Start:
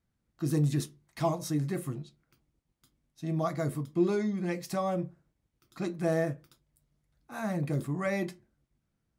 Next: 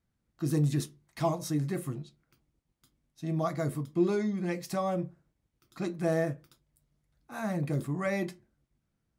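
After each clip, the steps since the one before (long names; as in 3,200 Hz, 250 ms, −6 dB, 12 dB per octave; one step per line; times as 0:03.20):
no processing that can be heard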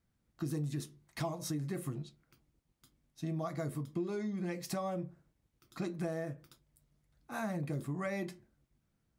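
downward compressor 6 to 1, threshold −35 dBFS, peak gain reduction 13.5 dB
level +1 dB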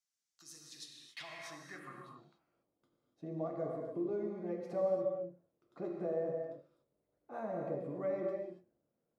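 reverb whose tail is shaped and stops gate 310 ms flat, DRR 0.5 dB
band-pass filter sweep 6,200 Hz → 510 Hz, 0:00.54–0:02.76
level +4 dB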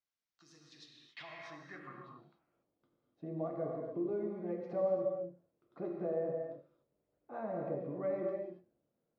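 high-frequency loss of the air 210 metres
level +1 dB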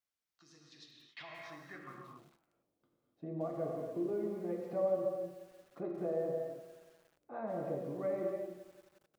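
feedback echo at a low word length 177 ms, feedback 55%, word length 9 bits, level −14 dB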